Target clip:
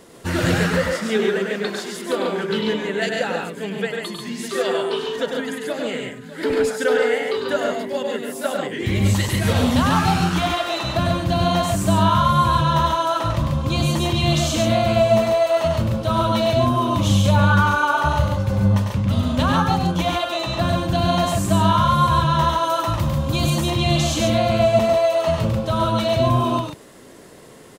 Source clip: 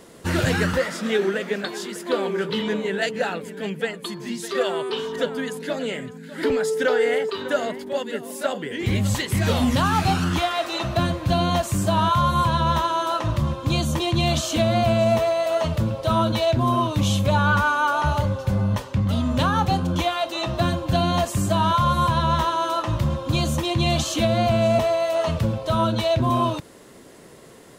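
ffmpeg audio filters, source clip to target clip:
ffmpeg -i in.wav -filter_complex "[0:a]asettb=1/sr,asplit=3[link_01][link_02][link_03];[link_01]atrim=end=22.634[link_04];[link_02]atrim=start=22.63:end=23.5,asetpts=PTS-STARTPTS,afade=type=in:duration=0.004:curve=qsin,afade=type=out:start_time=0.866:duration=0.004:curve=qsin,highshelf=frequency=11000:gain=11[link_05];[link_03]atrim=start=23.496[link_06];[link_04][link_05]acrossfade=duration=0.004:curve1=hsin:curve2=qsin[link_07];[link_07][link_06]acrossfade=duration=0.004:curve1=qsin:curve2=hsin,aecho=1:1:99.13|139.9:0.562|0.631" out.wav

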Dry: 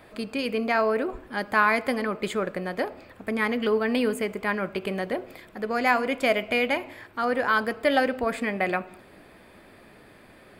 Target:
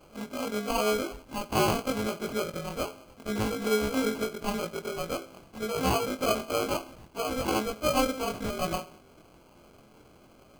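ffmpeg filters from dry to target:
ffmpeg -i in.wav -af "afftfilt=real='re':imag='-im':win_size=2048:overlap=0.75,acrusher=samples=24:mix=1:aa=0.000001" out.wav

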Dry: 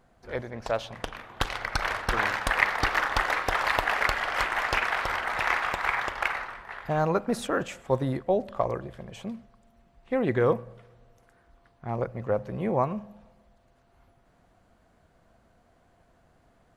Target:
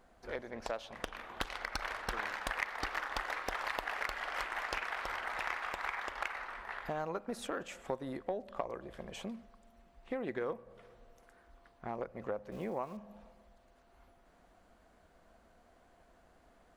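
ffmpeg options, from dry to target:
ffmpeg -i in.wav -filter_complex "[0:a]asettb=1/sr,asplit=3[link_01][link_02][link_03];[link_01]atrim=end=12.524[link_04];[link_02]atrim=start=12.52:end=12.97,asetpts=PTS-STARTPTS,afade=type=in:duration=0.004:curve=qsin,afade=type=out:start_time=0.446:duration=0.004:curve=qsin,aeval=exprs='val(0)*gte(abs(val(0)),0.00596)':channel_layout=same[link_05];[link_03]atrim=start=12.966[link_06];[link_04][link_05]acrossfade=duration=0.004:curve1=hsin:curve2=qsin[link_07];[link_07][link_06]acrossfade=duration=0.004:curve1=qsin:curve2=hsin,equalizer=frequency=120:width_type=o:width=0.87:gain=-13,acompressor=threshold=-39dB:ratio=3,aeval=exprs='0.0794*(cos(1*acos(clip(val(0)/0.0794,-1,1)))-cos(1*PI/2))+0.00891*(cos(3*acos(clip(val(0)/0.0794,-1,1)))-cos(3*PI/2))':channel_layout=same,volume=3dB" out.wav

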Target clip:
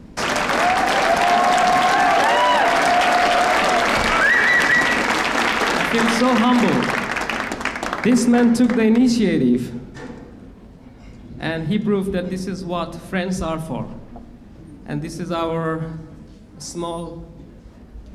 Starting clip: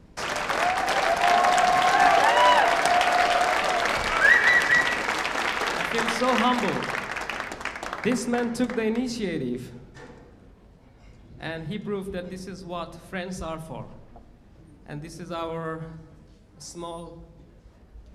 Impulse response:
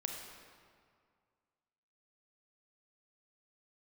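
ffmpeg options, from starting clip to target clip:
-af "equalizer=frequency=240:width=1.9:gain=7.5,alimiter=limit=-16dB:level=0:latency=1:release=12,volume=8dB"

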